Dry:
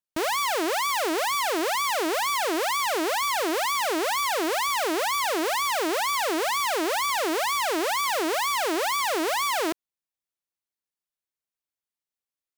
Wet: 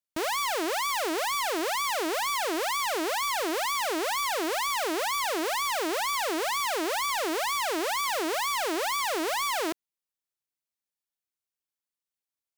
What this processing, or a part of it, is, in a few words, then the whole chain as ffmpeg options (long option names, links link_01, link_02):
exciter from parts: -filter_complex "[0:a]asplit=2[link_01][link_02];[link_02]highpass=frequency=4400:poles=1,asoftclip=type=tanh:threshold=-28dB,volume=-7.5dB[link_03];[link_01][link_03]amix=inputs=2:normalize=0,volume=-3.5dB"